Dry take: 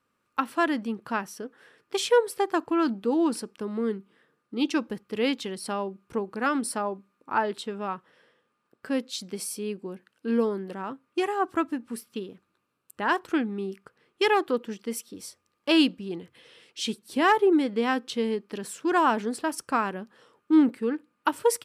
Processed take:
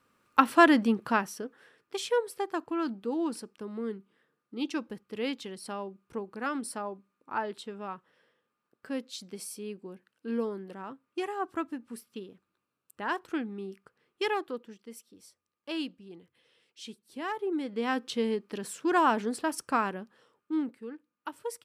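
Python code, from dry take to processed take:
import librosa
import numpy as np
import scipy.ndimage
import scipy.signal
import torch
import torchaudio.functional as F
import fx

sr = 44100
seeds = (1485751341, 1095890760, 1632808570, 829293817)

y = fx.gain(x, sr, db=fx.line((0.89, 5.5), (1.96, -7.0), (14.26, -7.0), (14.8, -14.0), (17.33, -14.0), (18.03, -2.0), (19.87, -2.0), (20.77, -14.0)))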